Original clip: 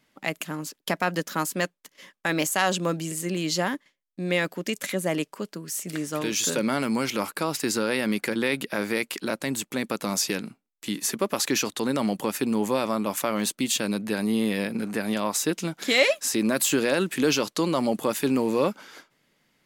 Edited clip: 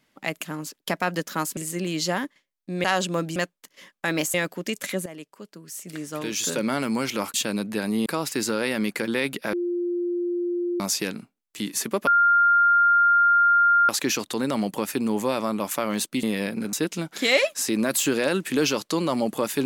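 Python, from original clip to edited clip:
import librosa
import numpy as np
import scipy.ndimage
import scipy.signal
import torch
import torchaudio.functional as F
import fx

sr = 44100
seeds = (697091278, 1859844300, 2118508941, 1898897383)

y = fx.edit(x, sr, fx.swap(start_s=1.57, length_s=0.98, other_s=3.07, other_length_s=1.27),
    fx.fade_in_from(start_s=5.06, length_s=1.65, floor_db=-15.5),
    fx.bleep(start_s=8.81, length_s=1.27, hz=350.0, db=-23.0),
    fx.insert_tone(at_s=11.35, length_s=1.82, hz=1400.0, db=-14.5),
    fx.move(start_s=13.69, length_s=0.72, to_s=7.34),
    fx.cut(start_s=14.91, length_s=0.48), tone=tone)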